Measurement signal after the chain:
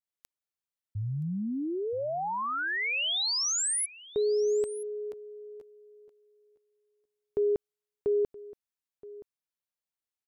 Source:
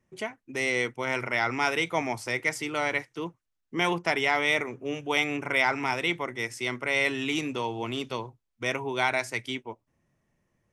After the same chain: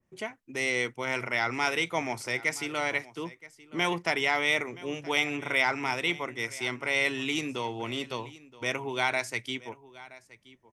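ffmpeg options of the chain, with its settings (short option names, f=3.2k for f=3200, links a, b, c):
-filter_complex "[0:a]asplit=2[a][b];[b]aecho=0:1:973:0.112[c];[a][c]amix=inputs=2:normalize=0,adynamicequalizer=threshold=0.0112:dfrequency=2100:dqfactor=0.7:tfrequency=2100:tqfactor=0.7:attack=5:release=100:ratio=0.375:range=1.5:mode=boostabove:tftype=highshelf,volume=-2.5dB"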